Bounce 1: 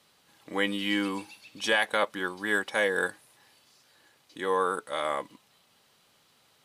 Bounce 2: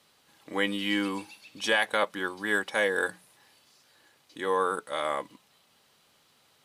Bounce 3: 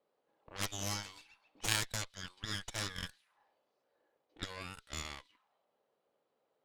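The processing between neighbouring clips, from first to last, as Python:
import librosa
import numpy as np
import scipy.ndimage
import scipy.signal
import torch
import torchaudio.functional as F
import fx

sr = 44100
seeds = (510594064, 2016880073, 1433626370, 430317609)

y1 = fx.hum_notches(x, sr, base_hz=60, count=3)
y2 = fx.auto_wah(y1, sr, base_hz=480.0, top_hz=4000.0, q=2.1, full_db=-29.5, direction='up')
y2 = fx.cheby_harmonics(y2, sr, harmonics=(3, 8), levels_db=(-8, -21), full_scale_db=-20.5)
y2 = y2 * librosa.db_to_amplitude(9.0)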